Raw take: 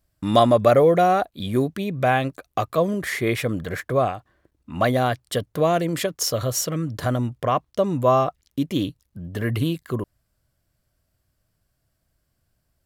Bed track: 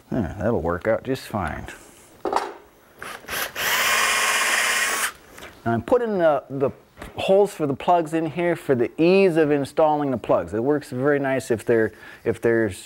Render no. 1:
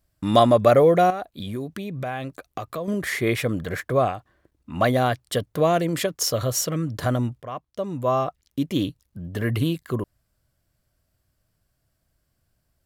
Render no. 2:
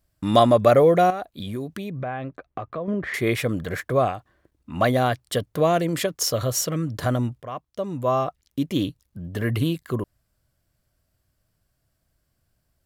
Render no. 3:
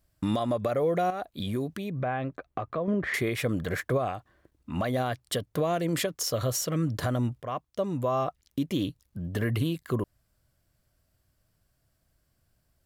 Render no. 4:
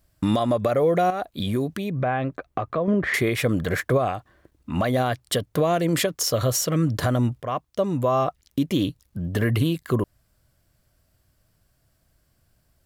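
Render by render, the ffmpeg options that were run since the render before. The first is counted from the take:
-filter_complex "[0:a]asettb=1/sr,asplit=3[a][b][c];[a]atrim=end=1.104[d];[b]atrim=start=1.1:end=2.88,asetpts=PTS-STARTPTS,afade=t=in:d=0.004:c=qsin,afade=t=out:st=1.776:d=0.004:c=qsin,acompressor=threshold=-29dB:ratio=3:attack=3.2:release=140:knee=1:detection=peak[e];[c]atrim=start=2.876[f];[d][e]acrossfade=d=0.004:c1=hsin:c2=qsin[g];[g][f]acrossfade=d=0.004:c1=qsin:c2=hsin,asplit=2[h][i];[h]atrim=end=7.42,asetpts=PTS-STARTPTS,afade=t=out:st=7.416:d=0.004:c=hsin:silence=0.188365[j];[i]atrim=start=7.42,asetpts=PTS-STARTPTS,afade=t=in:d=1.38:silence=0.188365[k];[j][k]concat=n=2:v=0:a=1"
-filter_complex "[0:a]asettb=1/sr,asplit=3[a][b][c];[a]atrim=end=1.904[d];[b]atrim=start=1.9:end=3.14,asetpts=PTS-STARTPTS,afade=t=in:d=0.004:c=qsin,afade=t=out:st=1.236:d=0.004:c=qsin,lowpass=2k[e];[c]atrim=start=3.136[f];[d][e]acrossfade=d=0.004:c1=hsin:c2=qsin[g];[g][f]acrossfade=d=0.004:c1=qsin:c2=hsin"
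-af "acompressor=threshold=-18dB:ratio=6,alimiter=limit=-18.5dB:level=0:latency=1:release=300"
-af "volume=6dB"

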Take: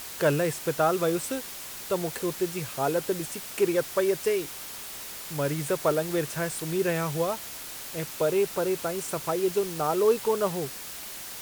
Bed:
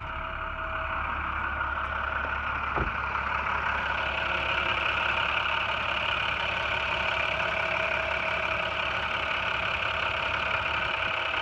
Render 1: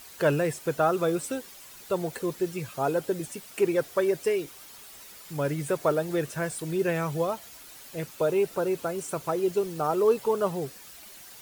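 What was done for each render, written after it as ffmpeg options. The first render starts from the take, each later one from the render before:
-af "afftdn=nr=10:nf=-40"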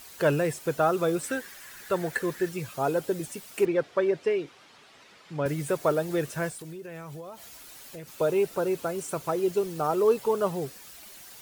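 -filter_complex "[0:a]asettb=1/sr,asplit=3[a][b][c];[a]atrim=end=1.234[d];[b]atrim=start=1.23:end=2.49,asetpts=PTS-STARTPTS,afade=t=in:d=0.004:c=qsin,afade=t=out:st=1.256:d=0.004:c=qsin,equalizer=f=1.7k:t=o:w=0.53:g=14[e];[c]atrim=start=2.486[f];[d][e]acrossfade=d=0.004:c1=hsin:c2=qsin[g];[g][f]acrossfade=d=0.004:c1=qsin:c2=hsin,asettb=1/sr,asplit=3[h][i][j];[h]atrim=end=3.654[k];[i]atrim=start=3.65:end=5.46,asetpts=PTS-STARTPTS,afade=t=in:d=0.004:c=qsin,afade=t=out:st=1.806:d=0.004:c=qsin,highpass=110,lowpass=3.5k[l];[j]atrim=start=5.456[m];[k][l]acrossfade=d=0.004:c1=hsin:c2=qsin[n];[n][m]acrossfade=d=0.004:c1=qsin:c2=hsin,asettb=1/sr,asplit=3[o][p][q];[o]atrim=end=6.494[r];[p]atrim=start=6.49:end=8.13,asetpts=PTS-STARTPTS,afade=t=in:d=0.004:c=qsin,afade=t=out:st=1.636:d=0.004:c=qsin,acompressor=threshold=-37dB:ratio=12:attack=3.2:release=140:knee=1:detection=peak[s];[q]atrim=start=8.126[t];[r][s]acrossfade=d=0.004:c1=hsin:c2=qsin[u];[u][t]acrossfade=d=0.004:c1=qsin:c2=hsin"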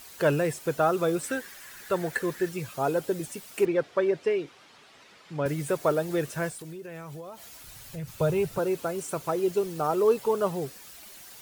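-filter_complex "[0:a]asettb=1/sr,asplit=3[a][b][c];[a]atrim=end=7.634[d];[b]atrim=start=7.63:end=8.59,asetpts=PTS-STARTPTS,afade=t=in:d=0.004:c=qsin,afade=t=out:st=0.956:d=0.004:c=qsin,lowshelf=f=180:t=q:w=1.5:g=13.5[e];[c]atrim=start=8.586[f];[d][e]acrossfade=d=0.004:c1=hsin:c2=qsin[g];[g][f]acrossfade=d=0.004:c1=qsin:c2=hsin"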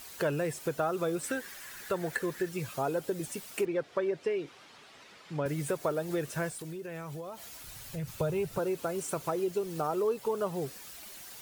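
-af "acompressor=threshold=-30dB:ratio=2.5"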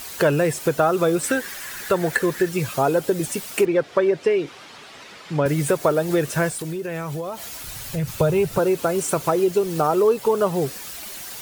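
-af "volume=12dB"

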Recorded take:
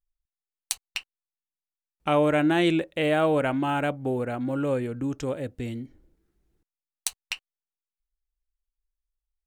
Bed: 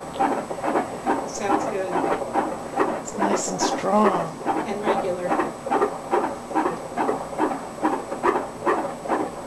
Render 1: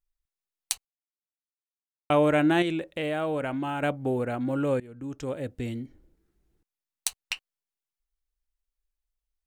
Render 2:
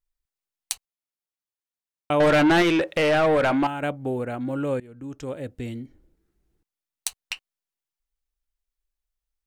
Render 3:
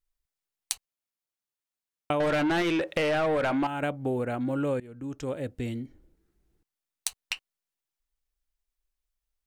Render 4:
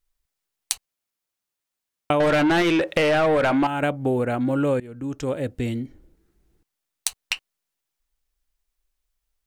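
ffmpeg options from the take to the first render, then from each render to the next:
-filter_complex "[0:a]asettb=1/sr,asplit=3[a][b][c];[a]atrim=end=2.624[d];[b]atrim=start=2.62:end=3.83,asetpts=PTS-STARTPTS,afade=t=in:d=0.004:c=qsin,afade=t=out:st=1.206:d=0.004:c=qsin,acompressor=threshold=-30dB:ratio=2:attack=3.2:release=140:knee=1:detection=peak[e];[c]atrim=start=3.826[f];[d][e]acrossfade=d=0.004:c1=hsin:c2=qsin[g];[g][f]acrossfade=d=0.004:c1=qsin:c2=hsin,asplit=4[h][i][j][k];[h]atrim=end=0.85,asetpts=PTS-STARTPTS,afade=t=out:st=0.846:d=0.004:c=hsin[l];[i]atrim=start=0.85:end=2.1,asetpts=PTS-STARTPTS,volume=0[m];[j]atrim=start=2.1:end=4.8,asetpts=PTS-STARTPTS,afade=t=in:d=0.004:c=hsin,afade=t=out:st=2.696:d=0.004:c=hsin:silence=0.1[n];[k]atrim=start=4.8,asetpts=PTS-STARTPTS,afade=t=in:d=0.72:silence=0.1[o];[l][m][n][o]concat=n=4:v=0:a=1"
-filter_complex "[0:a]asettb=1/sr,asplit=3[a][b][c];[a]atrim=end=2.204[d];[b]atrim=start=2.2:end=3.67,asetpts=PTS-STARTPTS,afade=t=in:d=0.004:c=qsin,afade=t=out:st=1.466:d=0.004:c=qsin,asplit=2[e][f];[f]highpass=f=720:p=1,volume=25dB,asoftclip=type=tanh:threshold=-11dB[g];[e][g]amix=inputs=2:normalize=0,lowpass=f=3.2k:p=1,volume=-6dB[h];[c]atrim=start=3.666[i];[d][h]acrossfade=d=0.004:c1=hsin:c2=qsin[j];[j][i]acrossfade=d=0.004:c1=qsin:c2=hsin"
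-af "acompressor=threshold=-24dB:ratio=6"
-af "volume=6.5dB,alimiter=limit=-1dB:level=0:latency=1"

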